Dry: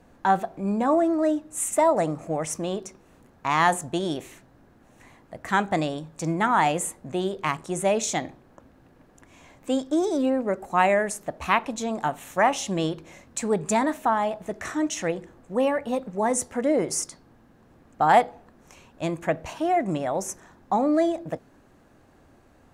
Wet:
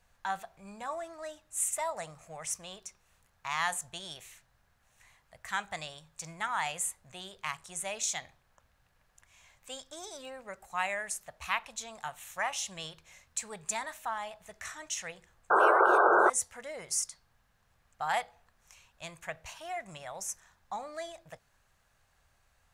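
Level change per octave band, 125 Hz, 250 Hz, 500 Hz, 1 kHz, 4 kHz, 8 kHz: -19.5, -20.5, -11.0, -7.5, -4.5, -3.0 dB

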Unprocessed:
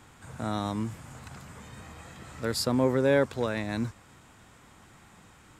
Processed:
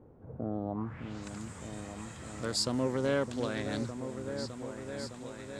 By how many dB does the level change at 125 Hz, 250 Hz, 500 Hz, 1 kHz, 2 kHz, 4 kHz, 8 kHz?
-4.0, -4.0, -5.5, -5.5, -5.5, -0.5, +0.5 dB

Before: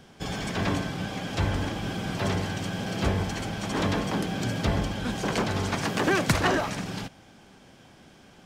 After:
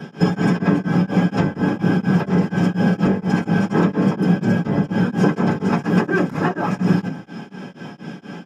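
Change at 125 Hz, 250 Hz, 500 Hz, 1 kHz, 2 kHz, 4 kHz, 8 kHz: +10.0 dB, +13.0 dB, +7.5 dB, +5.5 dB, +4.5 dB, -3.5 dB, n/a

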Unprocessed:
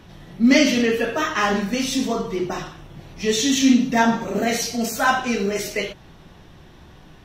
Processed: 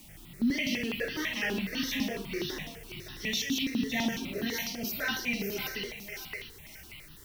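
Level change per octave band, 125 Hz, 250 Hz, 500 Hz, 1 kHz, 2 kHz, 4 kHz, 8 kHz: -9.5, -13.0, -15.5, -20.5, -8.5, -7.5, -12.5 dB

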